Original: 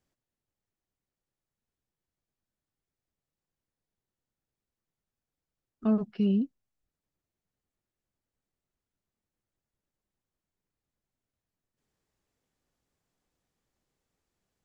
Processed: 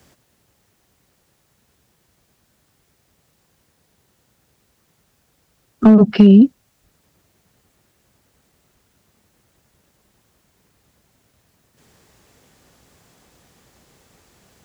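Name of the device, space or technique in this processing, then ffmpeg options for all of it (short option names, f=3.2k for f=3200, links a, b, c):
mastering chain: -filter_complex "[0:a]highpass=53,equalizer=f=300:t=o:w=0.43:g=-2,acrossover=split=190|770[a][b][c];[a]acompressor=threshold=-36dB:ratio=4[d];[b]acompressor=threshold=-27dB:ratio=4[e];[c]acompressor=threshold=-52dB:ratio=4[f];[d][e][f]amix=inputs=3:normalize=0,acompressor=threshold=-30dB:ratio=2,asoftclip=type=hard:threshold=-25.5dB,alimiter=level_in=29.5dB:limit=-1dB:release=50:level=0:latency=1,volume=-1dB"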